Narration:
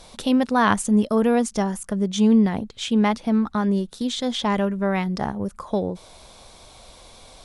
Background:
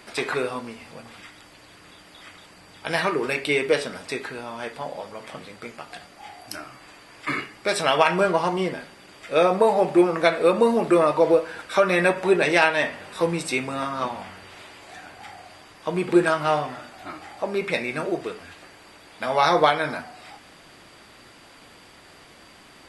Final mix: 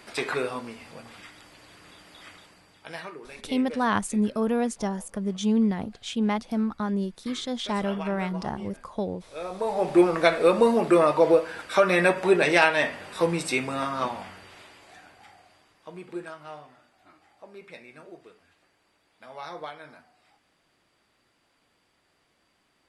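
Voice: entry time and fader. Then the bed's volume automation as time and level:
3.25 s, -6.0 dB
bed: 2.33 s -2.5 dB
3.23 s -19 dB
9.36 s -19 dB
9.95 s -1 dB
14.06 s -1 dB
16.4 s -20 dB

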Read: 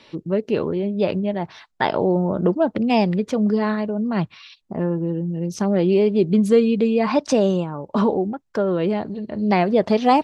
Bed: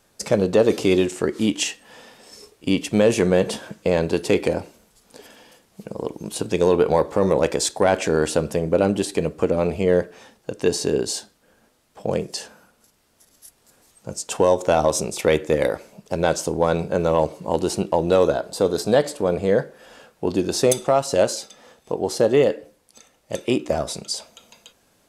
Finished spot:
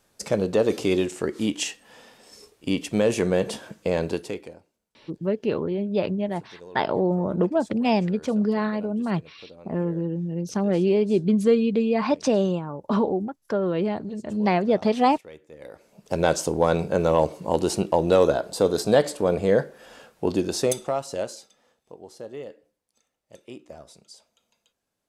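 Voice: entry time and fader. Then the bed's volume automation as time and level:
4.95 s, -3.5 dB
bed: 4.11 s -4.5 dB
4.64 s -26.5 dB
15.54 s -26.5 dB
16.12 s -1 dB
20.27 s -1 dB
22.08 s -20.5 dB

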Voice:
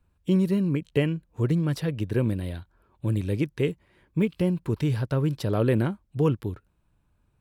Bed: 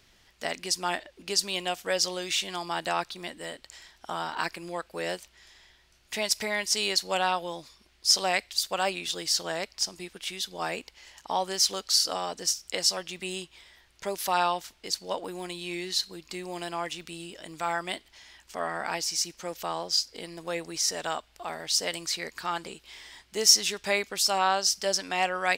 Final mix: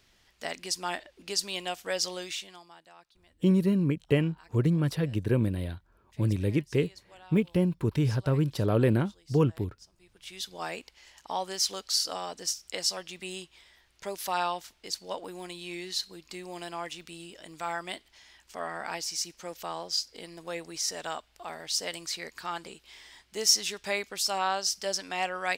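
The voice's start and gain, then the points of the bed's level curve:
3.15 s, -1.0 dB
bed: 2.22 s -3.5 dB
2.87 s -26 dB
9.94 s -26 dB
10.4 s -4 dB

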